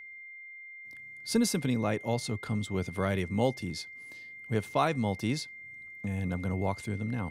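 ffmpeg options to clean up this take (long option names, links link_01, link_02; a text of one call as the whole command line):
ffmpeg -i in.wav -af "bandreject=frequency=2100:width=30" out.wav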